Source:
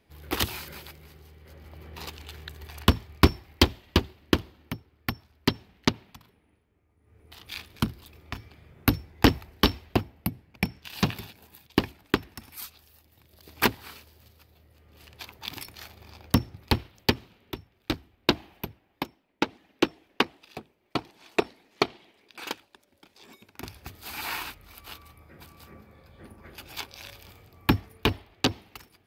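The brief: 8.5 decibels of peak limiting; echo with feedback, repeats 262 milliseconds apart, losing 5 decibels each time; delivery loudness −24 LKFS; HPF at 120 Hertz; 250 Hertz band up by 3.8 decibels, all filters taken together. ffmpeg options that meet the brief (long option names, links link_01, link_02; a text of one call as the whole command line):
ffmpeg -i in.wav -af "highpass=120,equalizer=frequency=250:width_type=o:gain=5,alimiter=limit=-9dB:level=0:latency=1,aecho=1:1:262|524|786|1048|1310|1572|1834:0.562|0.315|0.176|0.0988|0.0553|0.031|0.0173,volume=7dB" out.wav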